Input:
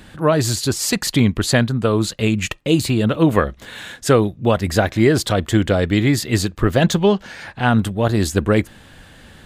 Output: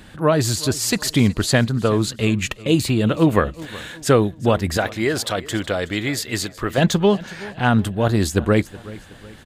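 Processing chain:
0:04.77–0:06.78: low-shelf EQ 390 Hz −11 dB
repeating echo 371 ms, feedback 43%, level −19.5 dB
level −1 dB

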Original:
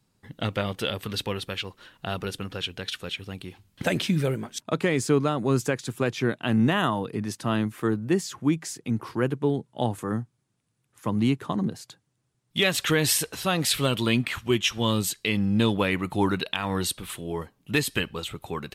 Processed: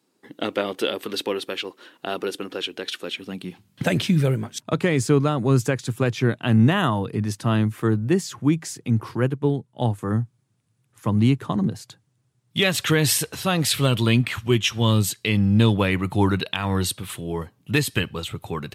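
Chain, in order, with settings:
high-pass filter sweep 320 Hz → 100 Hz, 0:02.99–0:04.05
0:09.17–0:10.03: expander for the loud parts 1.5 to 1, over −32 dBFS
level +2 dB

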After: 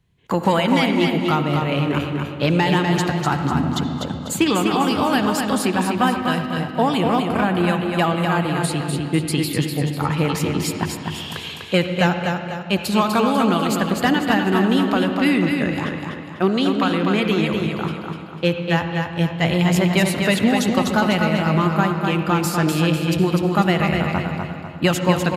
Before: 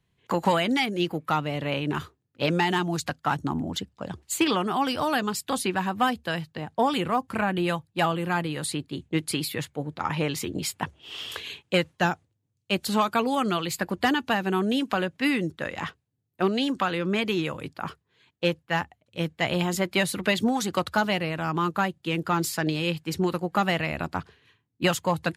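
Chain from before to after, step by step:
low-shelf EQ 240 Hz +7 dB
repeating echo 248 ms, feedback 42%, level −5 dB
convolution reverb RT60 2.2 s, pre-delay 60 ms, DRR 7 dB
level +3 dB

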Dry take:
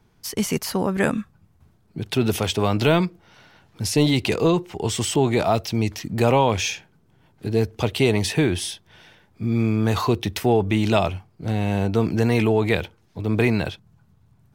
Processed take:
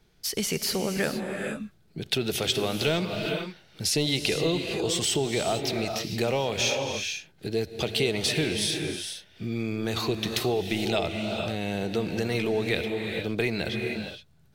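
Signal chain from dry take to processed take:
convolution reverb, pre-delay 3 ms, DRR 6 dB
downward compressor 2 to 1, threshold −22 dBFS, peak gain reduction 6 dB
graphic EQ with 15 bands 100 Hz −11 dB, 250 Hz −7 dB, 1,000 Hz −10 dB, 4,000 Hz +5 dB

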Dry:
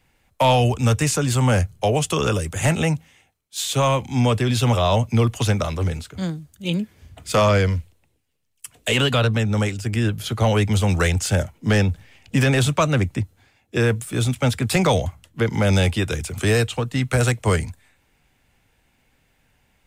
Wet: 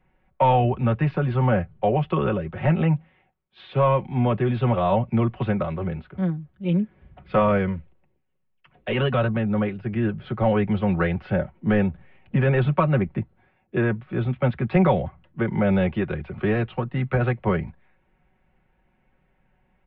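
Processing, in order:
Gaussian smoothing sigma 4 samples
comb filter 5.4 ms, depth 65%
level −2 dB

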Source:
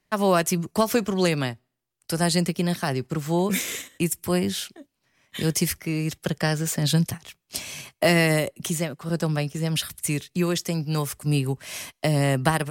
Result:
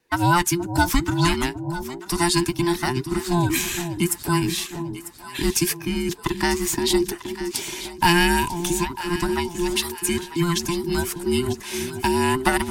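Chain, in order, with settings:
frequency inversion band by band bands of 500 Hz
delay that swaps between a low-pass and a high-pass 473 ms, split 840 Hz, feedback 63%, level −9 dB
dynamic equaliser 500 Hz, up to −8 dB, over −39 dBFS, Q 1.6
level +3.5 dB

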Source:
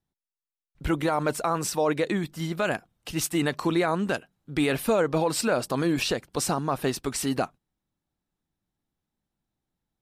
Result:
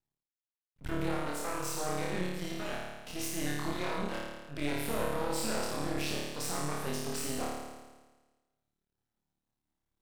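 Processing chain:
brickwall limiter −20.5 dBFS, peak gain reduction 6.5 dB
flutter between parallel walls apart 4.7 metres, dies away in 1.3 s
half-wave rectification
level −6 dB

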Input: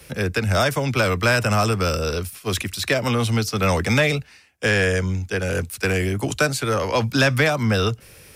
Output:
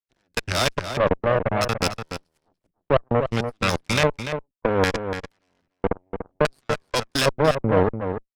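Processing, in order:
output level in coarse steps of 20 dB
auto-filter low-pass square 0.62 Hz 600–4,600 Hz
harmonic generator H 2 −6 dB, 3 −23 dB, 7 −19 dB, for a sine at −7.5 dBFS
slap from a distant wall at 50 metres, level −8 dB

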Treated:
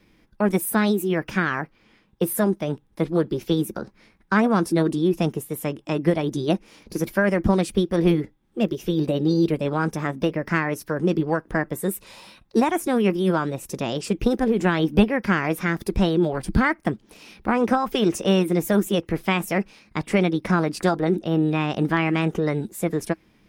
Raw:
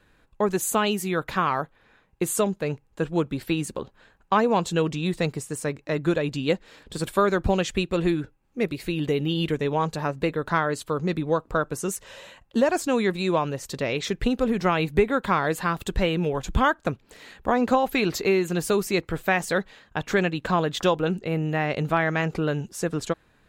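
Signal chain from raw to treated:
parametric band 510 Hz −3 dB 1.6 octaves
formants moved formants +5 semitones
dynamic equaliser 4,100 Hz, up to −7 dB, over −47 dBFS, Q 1.9
hollow resonant body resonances 210/320 Hz, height 10 dB, ringing for 45 ms

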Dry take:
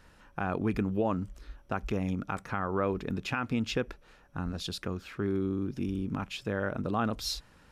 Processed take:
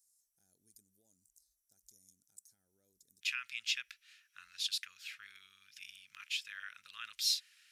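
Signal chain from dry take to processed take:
inverse Chebyshev high-pass filter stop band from 2,900 Hz, stop band 50 dB, from 0:03.21 stop band from 810 Hz
level +3 dB

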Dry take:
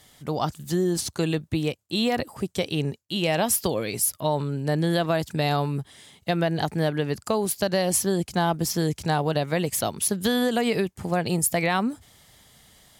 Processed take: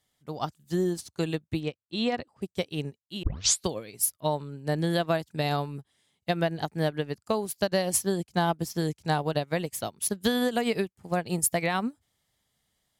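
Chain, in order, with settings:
0:01.60–0:02.42: low-pass filter 5,300 Hz 12 dB per octave
0:03.23: tape start 0.44 s
expander for the loud parts 2.5 to 1, over −34 dBFS

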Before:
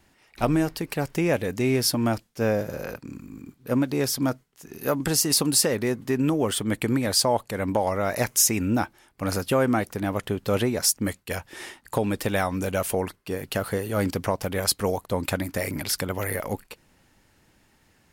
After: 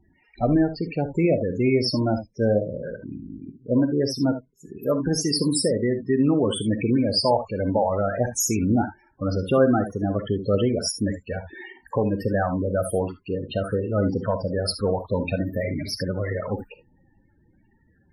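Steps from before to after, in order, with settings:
spectral peaks only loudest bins 16
on a send: convolution reverb, pre-delay 3 ms, DRR 9 dB
on the sum: level +2.5 dB

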